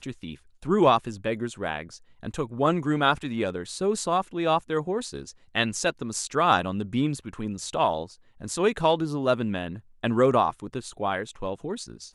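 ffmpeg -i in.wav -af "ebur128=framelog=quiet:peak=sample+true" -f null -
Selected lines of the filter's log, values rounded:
Integrated loudness:
  I:         -26.3 LUFS
  Threshold: -36.7 LUFS
Loudness range:
  LRA:         1.5 LU
  Threshold: -46.6 LUFS
  LRA low:   -27.4 LUFS
  LRA high:  -25.9 LUFS
Sample peak:
  Peak:       -6.7 dBFS
True peak:
  Peak:       -6.7 dBFS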